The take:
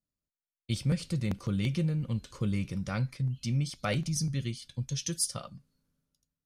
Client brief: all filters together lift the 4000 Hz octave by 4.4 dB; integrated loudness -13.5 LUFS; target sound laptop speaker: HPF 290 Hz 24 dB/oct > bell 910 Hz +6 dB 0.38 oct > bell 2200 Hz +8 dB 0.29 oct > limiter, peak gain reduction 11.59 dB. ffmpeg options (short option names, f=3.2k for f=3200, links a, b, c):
-af "highpass=f=290:w=0.5412,highpass=f=290:w=1.3066,equalizer=f=910:t=o:w=0.38:g=6,equalizer=f=2.2k:t=o:w=0.29:g=8,equalizer=f=4k:t=o:g=5.5,volume=26dB,alimiter=limit=0dB:level=0:latency=1"